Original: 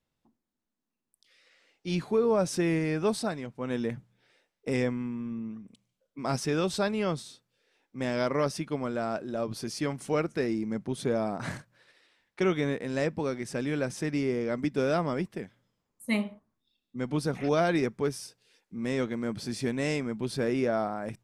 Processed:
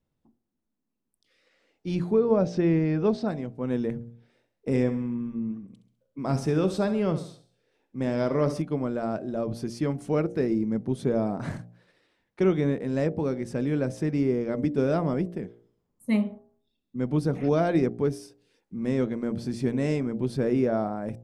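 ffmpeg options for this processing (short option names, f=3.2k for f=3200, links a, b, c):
-filter_complex "[0:a]asettb=1/sr,asplit=3[a][b][c];[a]atrim=end=2.134[d];[b]atrim=start=2.13:end=3.28,asetpts=PTS-STARTPTS,afade=t=in:d=0.004:c=qsin,afade=t=out:st=1.146:d=0.004:c=qsin,lowpass=f=5.5k:w=0.5412,lowpass=f=5.5k:w=1.3066[e];[c]atrim=start=3.276[f];[d][e]acrossfade=d=0.004:c1=hsin:c2=qsin[g];[g][f]acrossfade=d=0.004:c1=qsin:c2=hsin,asettb=1/sr,asplit=3[h][i][j];[h]atrim=end=3.944[k];[i]atrim=start=3.94:end=8.62,asetpts=PTS-STARTPTS,afade=t=in:d=0.004:c=qsin,afade=t=out:st=4.676:d=0.004:c=qsin,aecho=1:1:67|134|201|268:0.251|0.108|0.0464|0.02,atrim=end_sample=206388[l];[j]atrim=start=8.616[m];[k][l]acrossfade=d=0.004:c1=hsin:c2=qsin[n];[n][m]acrossfade=d=0.004:c1=qsin:c2=hsin,tiltshelf=f=810:g=6.5,bandreject=f=58.57:t=h:w=4,bandreject=f=117.14:t=h:w=4,bandreject=f=175.71:t=h:w=4,bandreject=f=234.28:t=h:w=4,bandreject=f=292.85:t=h:w=4,bandreject=f=351.42:t=h:w=4,bandreject=f=409.99:t=h:w=4,bandreject=f=468.56:t=h:w=4,bandreject=f=527.13:t=h:w=4,bandreject=f=585.7:t=h:w=4,bandreject=f=644.27:t=h:w=4,bandreject=f=702.84:t=h:w=4,bandreject=f=761.41:t=h:w=4,bandreject=f=819.98:t=h:w=4"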